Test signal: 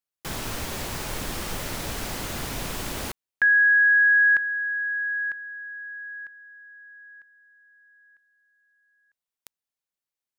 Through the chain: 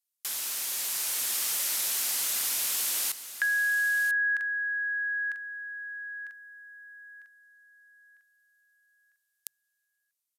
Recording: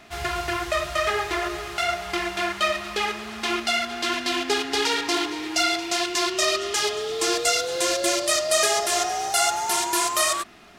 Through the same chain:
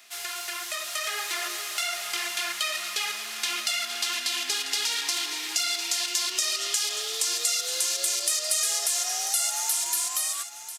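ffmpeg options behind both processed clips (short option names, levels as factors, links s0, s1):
-filter_complex "[0:a]aresample=32000,aresample=44100,bandreject=f=50:t=h:w=6,bandreject=f=100:t=h:w=6,bandreject=f=150:t=h:w=6,asplit=2[s0][s1];[s1]alimiter=limit=0.15:level=0:latency=1,volume=1.06[s2];[s0][s2]amix=inputs=2:normalize=0,aderivative,acompressor=threshold=0.0251:ratio=2.5:attack=16:release=148:detection=peak,highpass=f=97:w=0.5412,highpass=f=97:w=1.3066,dynaudnorm=f=270:g=7:m=1.58,asplit=2[s3][s4];[s4]aecho=0:1:992:0.237[s5];[s3][s5]amix=inputs=2:normalize=0"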